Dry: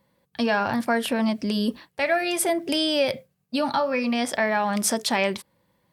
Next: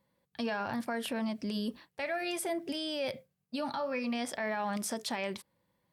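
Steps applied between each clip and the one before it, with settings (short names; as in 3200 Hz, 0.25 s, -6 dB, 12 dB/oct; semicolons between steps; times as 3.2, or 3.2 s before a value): limiter -17 dBFS, peak gain reduction 9 dB; gain -9 dB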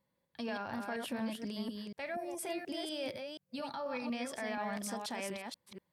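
reverse delay 0.241 s, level -4 dB; spectral gain 2.15–2.39, 1200–5200 Hz -18 dB; gain -5.5 dB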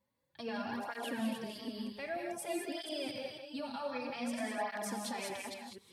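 non-linear reverb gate 0.23 s rising, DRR 2.5 dB; tape flanging out of phase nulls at 0.53 Hz, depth 6.8 ms; gain +1 dB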